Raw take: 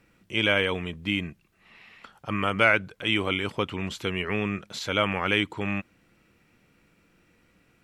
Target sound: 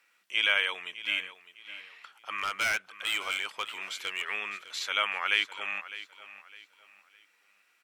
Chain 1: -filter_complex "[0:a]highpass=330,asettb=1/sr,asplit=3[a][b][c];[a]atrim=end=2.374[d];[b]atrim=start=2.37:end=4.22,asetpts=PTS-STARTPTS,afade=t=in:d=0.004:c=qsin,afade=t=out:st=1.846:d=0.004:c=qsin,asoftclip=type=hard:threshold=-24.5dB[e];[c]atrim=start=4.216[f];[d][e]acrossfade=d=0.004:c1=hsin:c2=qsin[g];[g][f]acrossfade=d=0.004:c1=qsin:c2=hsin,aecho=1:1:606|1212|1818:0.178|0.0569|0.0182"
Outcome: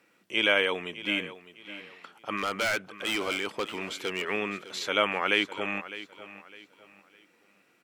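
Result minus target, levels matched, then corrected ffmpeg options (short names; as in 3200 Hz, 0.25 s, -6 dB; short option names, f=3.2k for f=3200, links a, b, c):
250 Hz band +18.0 dB
-filter_complex "[0:a]highpass=1.2k,asettb=1/sr,asplit=3[a][b][c];[a]atrim=end=2.374[d];[b]atrim=start=2.37:end=4.22,asetpts=PTS-STARTPTS,afade=t=in:d=0.004:c=qsin,afade=t=out:st=1.846:d=0.004:c=qsin,asoftclip=type=hard:threshold=-24.5dB[e];[c]atrim=start=4.216[f];[d][e]acrossfade=d=0.004:c1=hsin:c2=qsin[g];[g][f]acrossfade=d=0.004:c1=qsin:c2=hsin,aecho=1:1:606|1212|1818:0.178|0.0569|0.0182"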